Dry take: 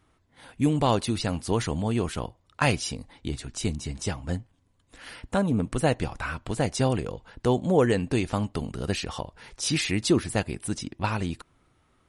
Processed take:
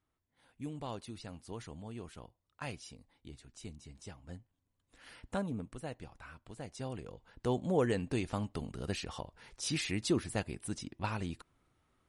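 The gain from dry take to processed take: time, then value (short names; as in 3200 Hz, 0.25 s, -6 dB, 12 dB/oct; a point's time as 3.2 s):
4.17 s -19 dB
5.33 s -10 dB
5.82 s -19.5 dB
6.66 s -19.5 dB
7.55 s -9 dB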